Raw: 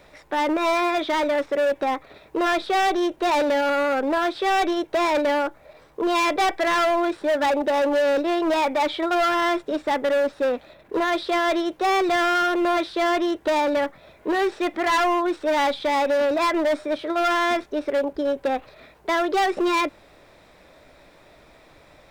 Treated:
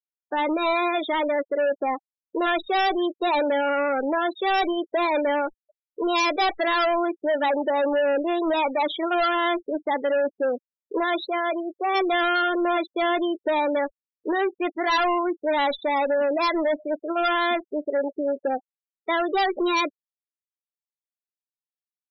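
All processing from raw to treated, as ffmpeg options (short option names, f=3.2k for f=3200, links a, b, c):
-filter_complex "[0:a]asettb=1/sr,asplit=3[a][b][c];[a]atrim=end=11.264[d];[b]atrim=start=11.26:end=11.95,asetpts=PTS-STARTPTS,afade=t=in:d=0.004:c=qsin,afade=t=out:st=0.686:d=0.004:c=qsin,highshelf=f=2.8k:g=-8.5,acompressor=mode=upward:threshold=-27dB:ratio=2.5:attack=3.2:release=140:knee=2.83:detection=peak,highpass=f=380:p=1[e];[c]atrim=start=11.946[f];[d][e]acrossfade=d=0.004:c1=hsin:c2=qsin[g];[g][f]acrossfade=d=0.004:c1=qsin:c2=hsin,afftdn=nr=17:nf=-29,afftfilt=real='re*gte(hypot(re,im),0.0447)':imag='im*gte(hypot(re,im),0.0447)':win_size=1024:overlap=0.75,bass=f=250:g=-1,treble=f=4k:g=13,volume=-1.5dB"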